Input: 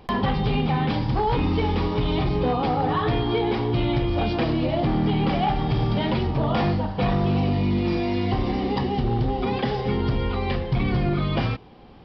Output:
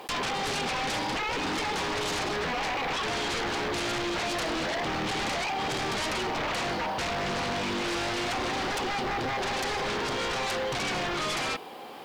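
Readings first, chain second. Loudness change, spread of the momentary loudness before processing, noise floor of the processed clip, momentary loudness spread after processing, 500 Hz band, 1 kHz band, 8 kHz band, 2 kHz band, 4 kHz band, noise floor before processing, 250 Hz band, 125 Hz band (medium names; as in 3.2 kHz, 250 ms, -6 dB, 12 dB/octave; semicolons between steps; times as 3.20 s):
-5.5 dB, 3 LU, -32 dBFS, 1 LU, -6.0 dB, -3.5 dB, no reading, +4.0 dB, +3.0 dB, -32 dBFS, -11.5 dB, -18.0 dB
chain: high-pass 490 Hz 12 dB/octave; compression, threshold -29 dBFS, peak gain reduction 9.5 dB; bit crusher 11-bit; sine folder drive 15 dB, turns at -18.5 dBFS; trim -8.5 dB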